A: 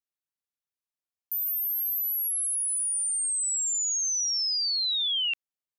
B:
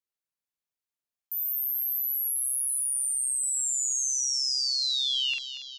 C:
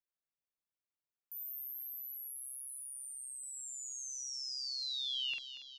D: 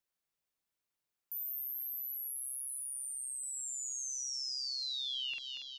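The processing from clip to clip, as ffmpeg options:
-filter_complex "[0:a]asplit=2[s0][s1];[s1]adelay=47,volume=0.708[s2];[s0][s2]amix=inputs=2:normalize=0,asplit=2[s3][s4];[s4]asplit=7[s5][s6][s7][s8][s9][s10][s11];[s5]adelay=235,afreqshift=67,volume=0.251[s12];[s6]adelay=470,afreqshift=134,volume=0.155[s13];[s7]adelay=705,afreqshift=201,volume=0.0966[s14];[s8]adelay=940,afreqshift=268,volume=0.0596[s15];[s9]adelay=1175,afreqshift=335,volume=0.0372[s16];[s10]adelay=1410,afreqshift=402,volume=0.0229[s17];[s11]adelay=1645,afreqshift=469,volume=0.0143[s18];[s12][s13][s14][s15][s16][s17][s18]amix=inputs=7:normalize=0[s19];[s3][s19]amix=inputs=2:normalize=0,volume=0.75"
-af "equalizer=f=9200:t=o:w=2.1:g=-13.5,volume=0.596"
-af "acompressor=threshold=0.00891:ratio=6,volume=1.88"

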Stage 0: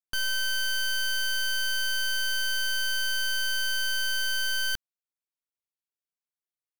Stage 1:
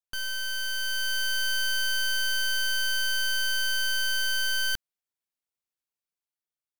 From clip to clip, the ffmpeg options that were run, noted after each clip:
-af "dynaudnorm=f=380:g=5:m=1.78,volume=0.631"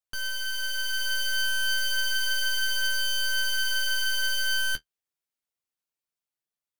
-af "flanger=delay=8.8:depth=4.3:regen=-37:speed=0.32:shape=sinusoidal,volume=1.58"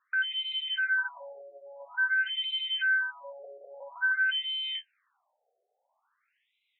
-filter_complex "[0:a]asplit=2[s0][s1];[s1]highpass=f=720:p=1,volume=39.8,asoftclip=type=tanh:threshold=0.0841[s2];[s0][s2]amix=inputs=2:normalize=0,lowpass=f=1000:p=1,volume=0.501,afftfilt=real='re*between(b*sr/1024,540*pow(2900/540,0.5+0.5*sin(2*PI*0.49*pts/sr))/1.41,540*pow(2900/540,0.5+0.5*sin(2*PI*0.49*pts/sr))*1.41)':imag='im*between(b*sr/1024,540*pow(2900/540,0.5+0.5*sin(2*PI*0.49*pts/sr))/1.41,540*pow(2900/540,0.5+0.5*sin(2*PI*0.49*pts/sr))*1.41)':win_size=1024:overlap=0.75,volume=2.51"

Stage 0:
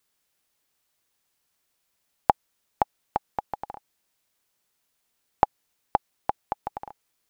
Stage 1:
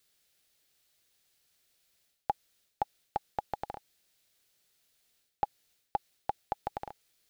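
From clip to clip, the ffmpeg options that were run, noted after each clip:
-af "equalizer=f=250:t=o:w=0.67:g=-4,equalizer=f=1000:t=o:w=0.67:g=-9,equalizer=f=4000:t=o:w=0.67:g=4,areverse,acompressor=threshold=0.0316:ratio=12,areverse,volume=1.33"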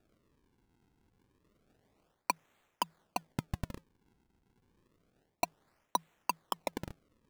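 -af "afreqshift=160,aphaser=in_gain=1:out_gain=1:delay=3.7:decay=0.28:speed=0.66:type=sinusoidal,acrusher=samples=42:mix=1:aa=0.000001:lfo=1:lforange=67.2:lforate=0.29"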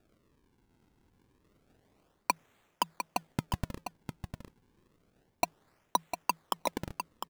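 -af "aecho=1:1:703:0.398,volume=1.41"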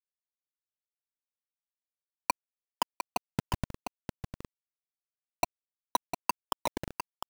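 -af "aeval=exprs='val(0)+0.000631*(sin(2*PI*50*n/s)+sin(2*PI*2*50*n/s)/2+sin(2*PI*3*50*n/s)/3+sin(2*PI*4*50*n/s)/4+sin(2*PI*5*50*n/s)/5)':c=same,acrusher=bits=5:mix=0:aa=0.000001"

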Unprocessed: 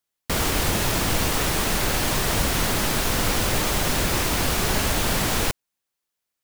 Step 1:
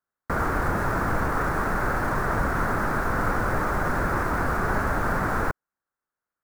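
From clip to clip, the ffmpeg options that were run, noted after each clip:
-filter_complex "[0:a]highshelf=f=2100:t=q:w=3:g=-13,acrossover=split=450|3800[s0][s1][s2];[s2]alimiter=level_in=4.47:limit=0.0631:level=0:latency=1,volume=0.224[s3];[s0][s1][s3]amix=inputs=3:normalize=0,volume=0.794"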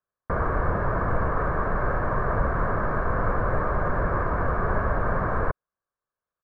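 -af "lowpass=1400,aecho=1:1:1.8:0.43"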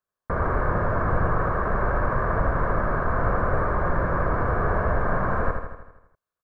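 -af "aecho=1:1:80|160|240|320|400|480|560|640:0.501|0.291|0.169|0.0978|0.0567|0.0329|0.0191|0.0111"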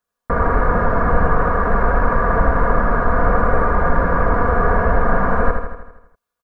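-af "aecho=1:1:4.2:0.58,volume=2"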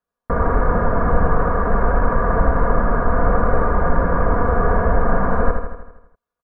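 -af "highshelf=f=2000:g=-12"

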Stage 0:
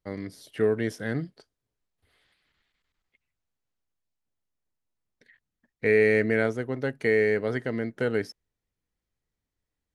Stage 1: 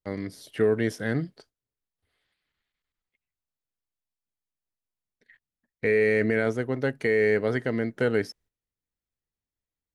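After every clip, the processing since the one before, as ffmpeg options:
-af "alimiter=limit=0.168:level=0:latency=1:release=11,agate=range=0.282:threshold=0.00112:ratio=16:detection=peak,volume=1.33"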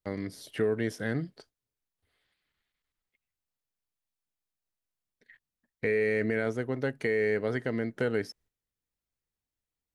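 -af "acompressor=threshold=0.0224:ratio=1.5"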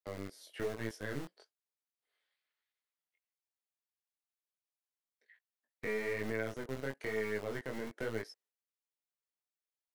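-filter_complex "[0:a]acrossover=split=370[s0][s1];[s0]acrusher=bits=3:dc=4:mix=0:aa=0.000001[s2];[s2][s1]amix=inputs=2:normalize=0,flanger=delay=18:depth=4.9:speed=1.1,volume=0.562"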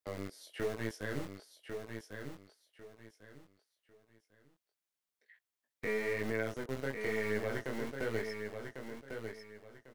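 -af "aecho=1:1:1098|2196|3294:0.473|0.128|0.0345,volume=1.19"

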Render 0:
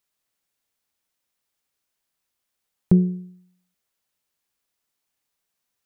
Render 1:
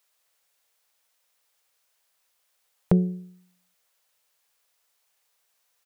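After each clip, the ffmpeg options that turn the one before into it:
-af "firequalizer=gain_entry='entry(160,0);entry(290,-8);entry(470,11)':delay=0.05:min_phase=1,volume=0.708"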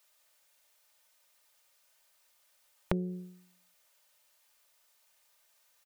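-af "aecho=1:1:3.3:0.55,acompressor=threshold=0.0316:ratio=6,volume=1.19"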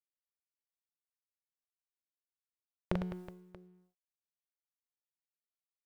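-af "aeval=exprs='sgn(val(0))*max(abs(val(0))-0.00335,0)':c=same,aecho=1:1:40|104|206.4|370.2|632.4:0.631|0.398|0.251|0.158|0.1,volume=0.708"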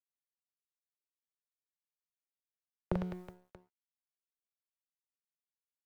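-filter_complex "[0:a]acrossover=split=120|750|1200[s0][s1][s2][s3];[s3]alimiter=level_in=4.22:limit=0.0631:level=0:latency=1:release=24,volume=0.237[s4];[s0][s1][s2][s4]amix=inputs=4:normalize=0,aeval=exprs='sgn(val(0))*max(abs(val(0))-0.0015,0)':c=same,volume=1.12"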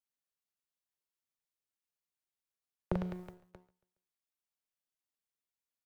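-af "aecho=1:1:139|278|417:0.0794|0.0357|0.0161"

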